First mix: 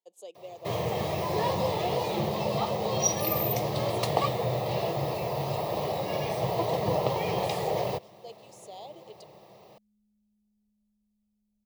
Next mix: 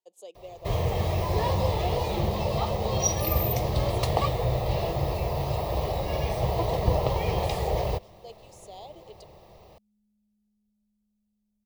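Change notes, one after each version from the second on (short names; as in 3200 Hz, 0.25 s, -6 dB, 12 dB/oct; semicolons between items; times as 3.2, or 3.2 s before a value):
first sound: remove HPF 130 Hz 24 dB/oct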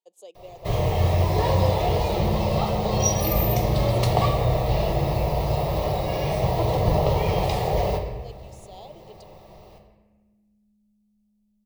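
reverb: on, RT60 1.3 s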